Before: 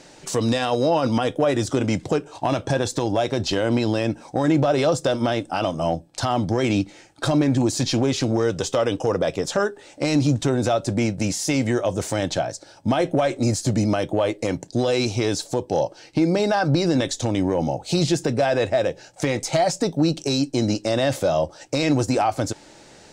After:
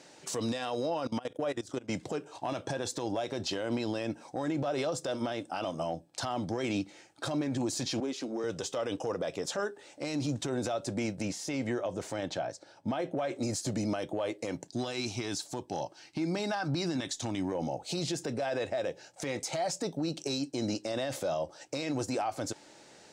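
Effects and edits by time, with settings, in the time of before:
1.07–1.91 s: level held to a coarse grid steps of 21 dB
8.00–8.44 s: ladder high-pass 200 Hz, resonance 35%
11.22–13.35 s: treble shelf 5.2 kHz -10.5 dB
14.68–17.52 s: peaking EQ 500 Hz -11 dB 0.56 oct
whole clip: high-pass 210 Hz 6 dB/octave; peak limiter -17 dBFS; trim -7 dB

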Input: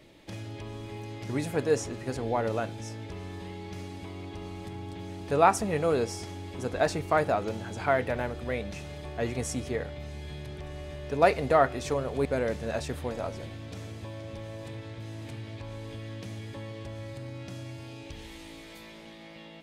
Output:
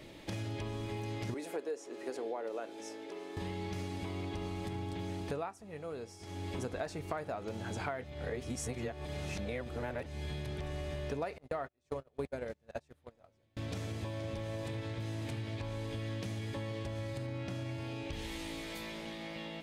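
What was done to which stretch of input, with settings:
1.34–3.37 s: ladder high-pass 300 Hz, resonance 40%
5.16–6.58 s: dip -20 dB, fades 0.39 s
8.04–10.06 s: reverse
11.38–13.57 s: gate -28 dBFS, range -38 dB
17.26–18.13 s: tone controls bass -1 dB, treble -7 dB
whole clip: compression 12:1, threshold -39 dBFS; trim +4 dB

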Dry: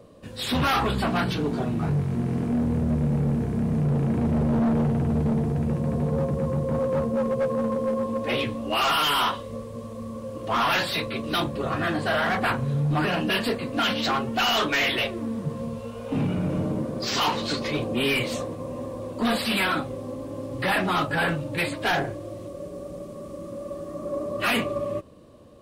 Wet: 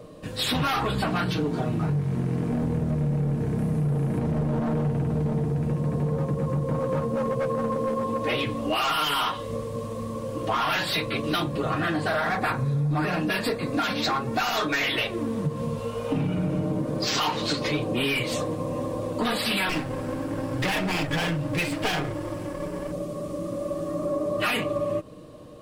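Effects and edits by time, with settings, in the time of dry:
3.58–4.19 s: peaking EQ 11 kHz +9 dB 0.57 oct
12.07–14.83 s: band-stop 3 kHz, Q 5.5
19.69–22.92 s: comb filter that takes the minimum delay 0.39 ms
whole clip: comb 6.5 ms, depth 42%; compression, threshold -28 dBFS; trim +5 dB

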